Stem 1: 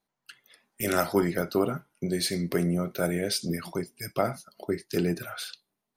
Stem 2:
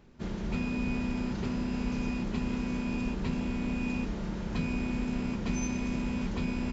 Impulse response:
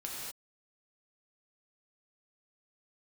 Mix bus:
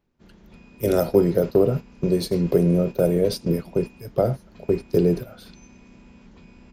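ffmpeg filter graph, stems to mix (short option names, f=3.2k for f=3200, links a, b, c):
-filter_complex "[0:a]equalizer=f=125:t=o:w=1:g=10,equalizer=f=500:t=o:w=1:g=11,equalizer=f=2k:t=o:w=1:g=-7,equalizer=f=8k:t=o:w=1:g=-8,acrossover=split=200|3000[a][b][c];[b]acompressor=threshold=-40dB:ratio=1.5[d];[a][d][c]amix=inputs=3:normalize=0,adynamicequalizer=threshold=0.01:dfrequency=450:dqfactor=1.2:tfrequency=450:tqfactor=1.2:attack=5:release=100:ratio=0.375:range=3.5:mode=boostabove:tftype=bell,volume=2.5dB[e];[1:a]bandreject=f=50:t=h:w=6,bandreject=f=100:t=h:w=6,bandreject=f=150:t=h:w=6,bandreject=f=200:t=h:w=6,bandreject=f=250:t=h:w=6,volume=-5dB[f];[e][f]amix=inputs=2:normalize=0,agate=range=-10dB:threshold=-25dB:ratio=16:detection=peak"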